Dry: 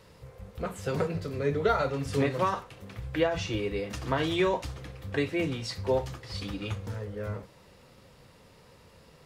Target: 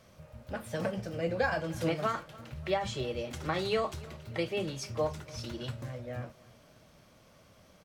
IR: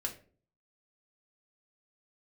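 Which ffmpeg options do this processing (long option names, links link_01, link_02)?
-af "asetrate=52038,aresample=44100,aecho=1:1:291|582|873:0.075|0.036|0.0173,volume=-4dB"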